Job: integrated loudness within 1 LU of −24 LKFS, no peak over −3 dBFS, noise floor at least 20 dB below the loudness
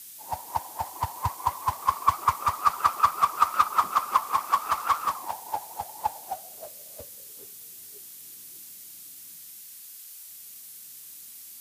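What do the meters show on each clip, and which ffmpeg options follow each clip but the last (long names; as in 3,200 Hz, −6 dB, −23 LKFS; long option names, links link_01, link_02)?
background noise floor −45 dBFS; target noise floor −47 dBFS; integrated loudness −27.0 LKFS; sample peak −6.5 dBFS; target loudness −24.0 LKFS
→ -af "afftdn=noise_reduction=6:noise_floor=-45"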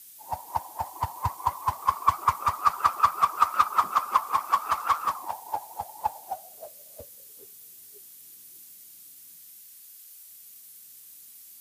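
background noise floor −49 dBFS; integrated loudness −27.0 LKFS; sample peak −6.5 dBFS; target loudness −24.0 LKFS
→ -af "volume=3dB"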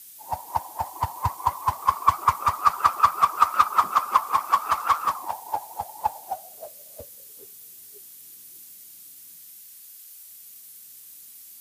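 integrated loudness −24.0 LKFS; sample peak −3.5 dBFS; background noise floor −46 dBFS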